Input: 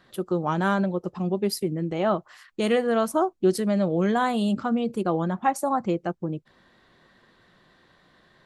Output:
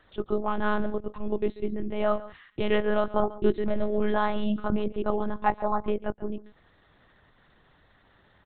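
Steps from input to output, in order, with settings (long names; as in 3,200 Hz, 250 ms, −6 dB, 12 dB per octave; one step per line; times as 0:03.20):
single-tap delay 139 ms −17.5 dB
one-pitch LPC vocoder at 8 kHz 210 Hz
level −1.5 dB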